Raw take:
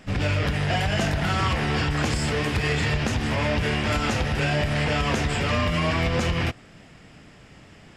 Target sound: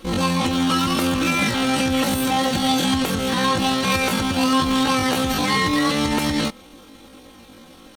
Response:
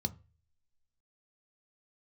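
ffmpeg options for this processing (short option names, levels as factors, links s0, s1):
-af "bandreject=f=2800:w=7.3,aecho=1:1:6.7:0.63,asetrate=78577,aresample=44100,atempo=0.561231,volume=1.33"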